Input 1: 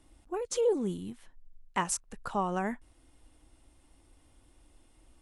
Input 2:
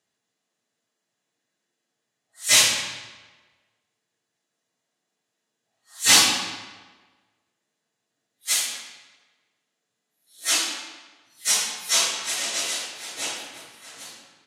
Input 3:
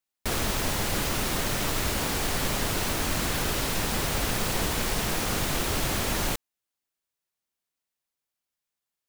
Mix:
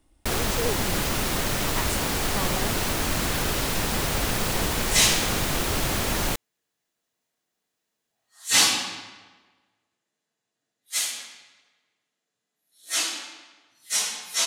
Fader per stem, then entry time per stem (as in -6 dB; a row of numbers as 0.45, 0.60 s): -3.0, -3.5, +2.0 dB; 0.00, 2.45, 0.00 s